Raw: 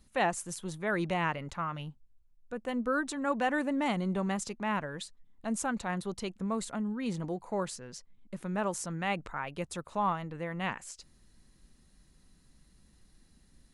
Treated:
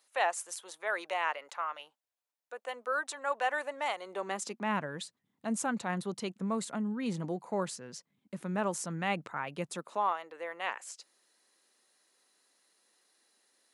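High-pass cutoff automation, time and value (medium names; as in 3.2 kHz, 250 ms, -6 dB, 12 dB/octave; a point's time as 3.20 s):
high-pass 24 dB/octave
4.00 s 530 Hz
4.81 s 130 Hz
9.65 s 130 Hz
10.14 s 430 Hz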